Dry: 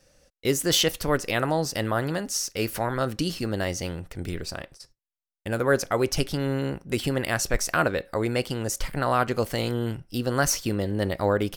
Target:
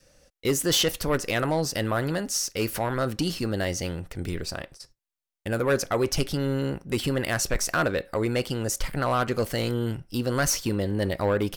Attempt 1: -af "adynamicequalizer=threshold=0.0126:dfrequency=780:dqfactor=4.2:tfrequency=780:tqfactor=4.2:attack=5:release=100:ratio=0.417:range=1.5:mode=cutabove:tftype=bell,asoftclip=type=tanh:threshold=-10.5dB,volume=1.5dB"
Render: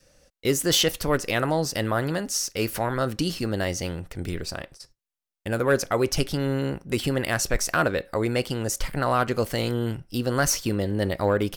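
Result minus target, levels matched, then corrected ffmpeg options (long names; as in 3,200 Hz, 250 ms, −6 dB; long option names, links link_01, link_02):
soft clipping: distortion −9 dB
-af "adynamicequalizer=threshold=0.0126:dfrequency=780:dqfactor=4.2:tfrequency=780:tqfactor=4.2:attack=5:release=100:ratio=0.417:range=1.5:mode=cutabove:tftype=bell,asoftclip=type=tanh:threshold=-17dB,volume=1.5dB"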